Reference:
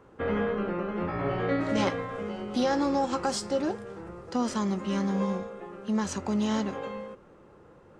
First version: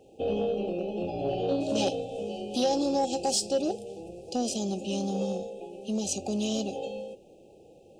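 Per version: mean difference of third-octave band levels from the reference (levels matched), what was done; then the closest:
6.5 dB: linear-phase brick-wall band-stop 840–2,400 Hz
high-shelf EQ 6,700 Hz +6 dB
soft clipping −16.5 dBFS, distortion −27 dB
bass and treble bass −8 dB, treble +2 dB
level +2.5 dB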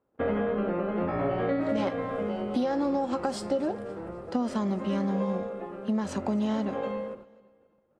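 3.5 dB: noise gate −50 dBFS, range −25 dB
graphic EQ with 15 bands 250 Hz +6 dB, 630 Hz +8 dB, 6,300 Hz −8 dB
downward compressor, threshold −24 dBFS, peak gain reduction 8 dB
repeating echo 261 ms, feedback 44%, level −22.5 dB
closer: second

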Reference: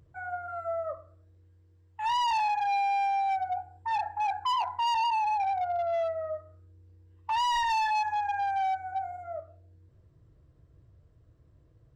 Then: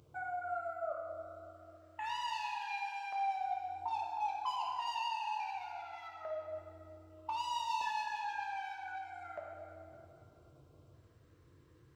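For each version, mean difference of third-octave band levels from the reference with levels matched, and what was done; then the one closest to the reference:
7.0 dB: high-pass filter 420 Hz 6 dB per octave
downward compressor 5 to 1, threshold −44 dBFS, peak gain reduction 16 dB
auto-filter notch square 0.32 Hz 660–1,800 Hz
dense smooth reverb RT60 2.6 s, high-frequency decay 0.8×, DRR −1.5 dB
level +5 dB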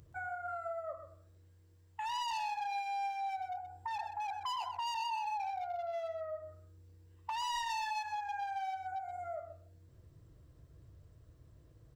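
4.0 dB: downward compressor, threshold −39 dBFS, peak gain reduction 11.5 dB
high-shelf EQ 4,200 Hz +10.5 dB
on a send: single-tap delay 127 ms −9.5 dB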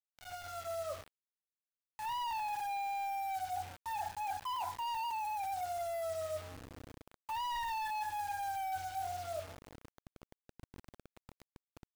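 11.0 dB: fade in at the beginning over 1.31 s
bass and treble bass +4 dB, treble −6 dB
reversed playback
downward compressor 12 to 1, threshold −36 dBFS, peak gain reduction 10 dB
reversed playback
bit reduction 8 bits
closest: second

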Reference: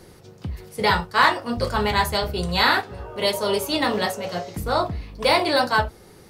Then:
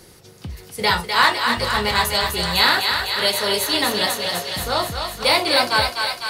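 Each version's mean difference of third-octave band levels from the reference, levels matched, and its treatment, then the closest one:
7.5 dB: high-shelf EQ 2,100 Hz +9 dB
on a send: feedback echo with a high-pass in the loop 252 ms, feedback 74%, high-pass 630 Hz, level −4.5 dB
on the sum: level −2 dB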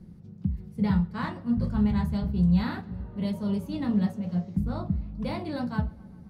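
11.5 dB: drawn EQ curve 130 Hz 0 dB, 190 Hz +10 dB, 390 Hz −15 dB, 8,200 Hz −25 dB
feedback echo with a low-pass in the loop 132 ms, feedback 74%, low-pass 4,000 Hz, level −24 dB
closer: first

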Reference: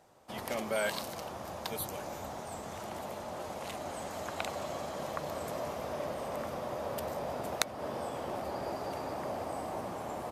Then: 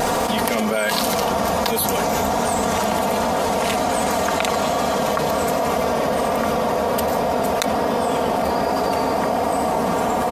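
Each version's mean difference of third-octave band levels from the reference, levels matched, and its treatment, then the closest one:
3.0 dB: comb filter 4.3 ms, depth 60%
pitch vibrato 1.3 Hz 25 cents
envelope flattener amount 100%
level +5.5 dB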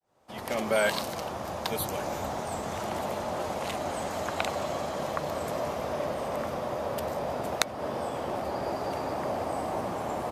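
1.5 dB: fade in at the beginning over 0.71 s
high-shelf EQ 7,500 Hz −4.5 dB
speech leveller within 3 dB 2 s
level +6 dB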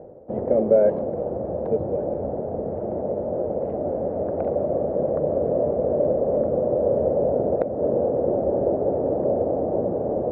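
15.5 dB: low-pass filter 1,400 Hz 24 dB per octave
low shelf with overshoot 750 Hz +13.5 dB, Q 3
reversed playback
upward compression, threshold −28 dBFS
reversed playback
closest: second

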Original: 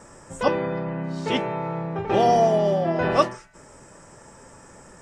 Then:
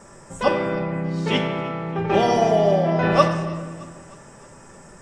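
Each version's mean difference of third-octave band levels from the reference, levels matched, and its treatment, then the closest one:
3.0 dB: dynamic equaliser 2,700 Hz, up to +3 dB, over −40 dBFS, Q 0.7
on a send: feedback echo with a high-pass in the loop 309 ms, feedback 60%, high-pass 420 Hz, level −21 dB
on the sum: rectangular room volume 1,700 cubic metres, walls mixed, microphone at 1.2 metres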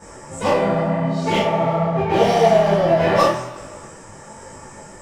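4.5 dB: in parallel at −6 dB: wave folding −23 dBFS
on the sum: coupled-rooms reverb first 0.37 s, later 1.8 s, from −18 dB, DRR −7.5 dB
micro pitch shift up and down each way 38 cents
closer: first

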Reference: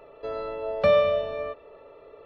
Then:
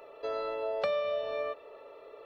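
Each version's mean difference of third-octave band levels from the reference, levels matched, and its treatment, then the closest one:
4.5 dB: downward compressor 6 to 1, threshold −28 dBFS, peak gain reduction 12 dB
bass and treble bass −14 dB, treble +7 dB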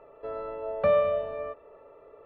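1.5 dB: low-pass filter 1,500 Hz 12 dB per octave
tilt shelving filter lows −3 dB
level −1.5 dB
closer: second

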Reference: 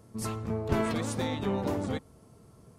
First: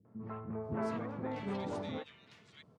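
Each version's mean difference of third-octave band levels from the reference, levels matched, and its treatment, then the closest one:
7.0 dB: band-pass filter 140–3,200 Hz
three-band delay without the direct sound lows, mids, highs 50/640 ms, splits 340/2,000 Hz
level −5.5 dB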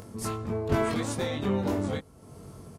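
3.0 dB: upward compression, threshold −38 dBFS
double-tracking delay 21 ms −2.5 dB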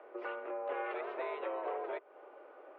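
16.5 dB: downward compressor 6 to 1, threshold −40 dBFS, peak gain reduction 17 dB
single-sideband voice off tune +140 Hz 280–2,600 Hz
level +7 dB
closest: second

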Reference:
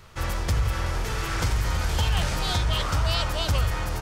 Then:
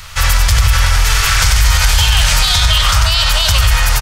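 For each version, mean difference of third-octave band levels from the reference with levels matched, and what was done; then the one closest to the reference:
7.5 dB: guitar amp tone stack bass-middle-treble 10-0-10
on a send: single-tap delay 95 ms −7.5 dB
on the sum: boost into a limiter +24.5 dB
level −1 dB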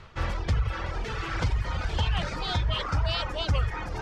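5.5 dB: reverb reduction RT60 1.5 s
low-pass filter 3,900 Hz 12 dB per octave
reversed playback
upward compression, threshold −29 dBFS
reversed playback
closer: second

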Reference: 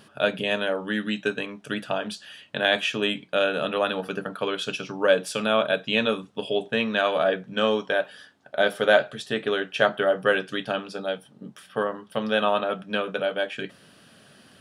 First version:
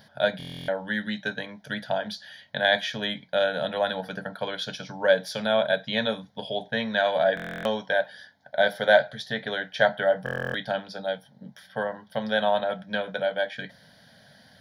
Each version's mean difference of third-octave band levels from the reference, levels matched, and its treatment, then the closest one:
3.5 dB: phaser with its sweep stopped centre 1,800 Hz, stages 8
buffer that repeats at 0:00.38/0:07.35/0:10.24, samples 1,024, times 12
level +2 dB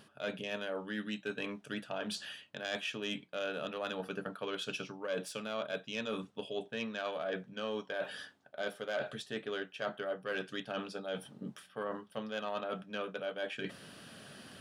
5.0 dB: phase distortion by the signal itself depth 0.077 ms
reversed playback
downward compressor 4 to 1, threshold −39 dBFS, peak gain reduction 21 dB
reversed playback
level +1 dB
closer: first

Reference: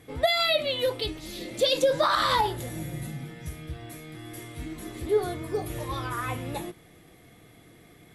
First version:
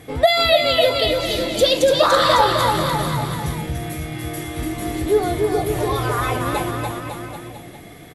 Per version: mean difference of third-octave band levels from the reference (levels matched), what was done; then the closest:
5.0 dB: in parallel at 0 dB: downward compressor, threshold −32 dBFS, peak gain reduction 13.5 dB
on the sum: parametric band 720 Hz +4.5 dB 0.38 octaves
bouncing-ball delay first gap 290 ms, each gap 0.9×, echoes 5
level +4 dB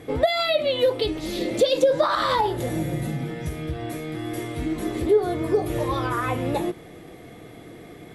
3.5 dB: high-shelf EQ 8,000 Hz −6.5 dB
downward compressor 2.5 to 1, threshold −33 dBFS, peak gain reduction 10.5 dB
parametric band 450 Hz +7 dB 2.1 octaves
level +7 dB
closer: second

